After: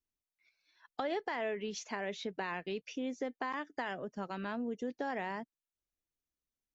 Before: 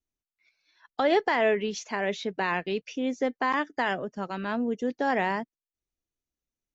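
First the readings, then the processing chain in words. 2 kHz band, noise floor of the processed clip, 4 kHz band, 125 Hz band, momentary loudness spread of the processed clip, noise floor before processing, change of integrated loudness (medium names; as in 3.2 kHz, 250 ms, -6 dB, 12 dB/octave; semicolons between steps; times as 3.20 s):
-11.0 dB, under -85 dBFS, -9.5 dB, -9.0 dB, 5 LU, under -85 dBFS, -11.0 dB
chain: compression 3:1, threshold -30 dBFS, peak gain reduction 9 dB; trim -5 dB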